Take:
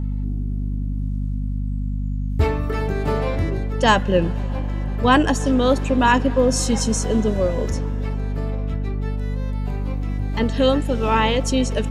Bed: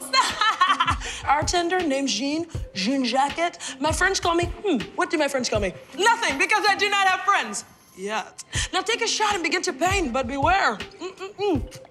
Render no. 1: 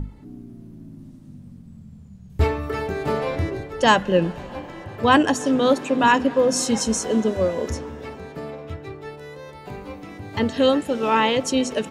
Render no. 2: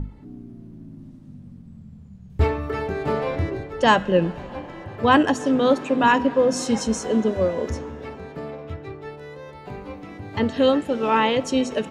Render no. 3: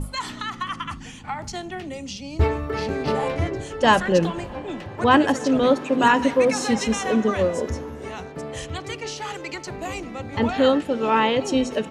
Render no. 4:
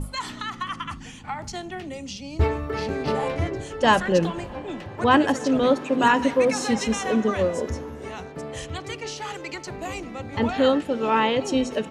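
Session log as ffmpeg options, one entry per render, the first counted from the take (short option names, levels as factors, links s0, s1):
-af "bandreject=f=50:t=h:w=6,bandreject=f=100:t=h:w=6,bandreject=f=150:t=h:w=6,bandreject=f=200:t=h:w=6,bandreject=f=250:t=h:w=6"
-af "lowpass=f=3600:p=1,bandreject=f=322.5:t=h:w=4,bandreject=f=645:t=h:w=4,bandreject=f=967.5:t=h:w=4,bandreject=f=1290:t=h:w=4,bandreject=f=1612.5:t=h:w=4,bandreject=f=1935:t=h:w=4,bandreject=f=2257.5:t=h:w=4,bandreject=f=2580:t=h:w=4,bandreject=f=2902.5:t=h:w=4,bandreject=f=3225:t=h:w=4,bandreject=f=3547.5:t=h:w=4,bandreject=f=3870:t=h:w=4,bandreject=f=4192.5:t=h:w=4,bandreject=f=4515:t=h:w=4,bandreject=f=4837.5:t=h:w=4,bandreject=f=5160:t=h:w=4,bandreject=f=5482.5:t=h:w=4,bandreject=f=5805:t=h:w=4,bandreject=f=6127.5:t=h:w=4,bandreject=f=6450:t=h:w=4,bandreject=f=6772.5:t=h:w=4,bandreject=f=7095:t=h:w=4,bandreject=f=7417.5:t=h:w=4,bandreject=f=7740:t=h:w=4,bandreject=f=8062.5:t=h:w=4,bandreject=f=8385:t=h:w=4,bandreject=f=8707.5:t=h:w=4"
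-filter_complex "[1:a]volume=0.299[s0];[0:a][s0]amix=inputs=2:normalize=0"
-af "volume=0.841"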